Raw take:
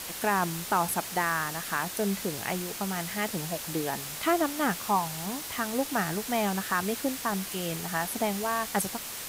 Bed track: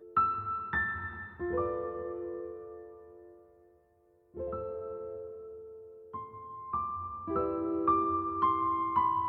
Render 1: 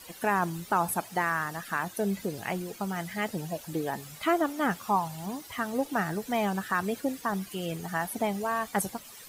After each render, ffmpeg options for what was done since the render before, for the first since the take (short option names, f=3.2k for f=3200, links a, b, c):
-af "afftdn=nr=14:nf=-38"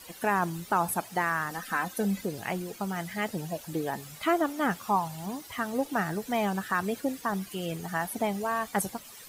-filter_complex "[0:a]asettb=1/sr,asplit=3[a][b][c];[a]atrim=end=1.504[d];[b]atrim=start=1.5:end=2.21,asetpts=PTS-STARTPTS,afade=t=in:d=0.004:c=qsin,afade=t=out:st=0.706:d=0.004:c=qsin,aecho=1:1:3.9:0.65,atrim=end_sample=31311[e];[c]atrim=start=2.206[f];[d][e]acrossfade=d=0.004:c1=hsin:c2=qsin[g];[g][f]acrossfade=d=0.004:c1=qsin:c2=hsin"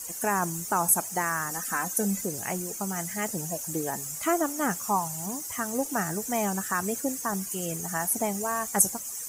-af "highshelf=f=5.1k:t=q:w=3:g=10"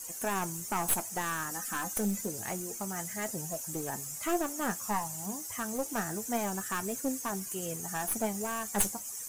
-af "aeval=exprs='clip(val(0),-1,0.0447)':c=same,flanger=delay=7.6:depth=2.1:regen=59:speed=0.28:shape=sinusoidal"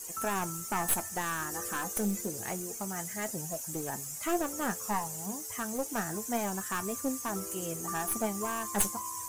-filter_complex "[1:a]volume=-13.5dB[a];[0:a][a]amix=inputs=2:normalize=0"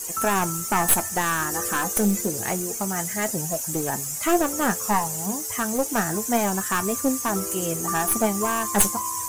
-af "volume=10dB,alimiter=limit=-2dB:level=0:latency=1"